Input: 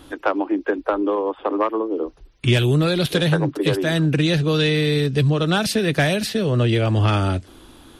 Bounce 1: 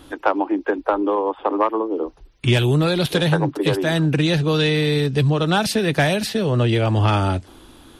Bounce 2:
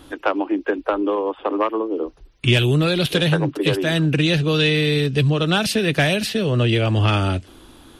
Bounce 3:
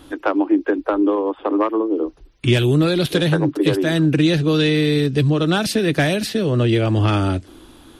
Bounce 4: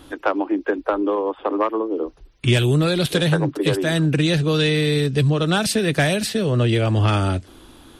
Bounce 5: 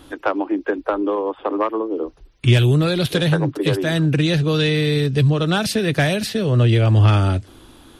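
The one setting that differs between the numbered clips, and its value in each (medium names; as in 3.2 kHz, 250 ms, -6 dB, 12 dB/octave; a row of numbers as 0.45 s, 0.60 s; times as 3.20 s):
dynamic bell, frequency: 870 Hz, 2.8 kHz, 310 Hz, 8.2 kHz, 110 Hz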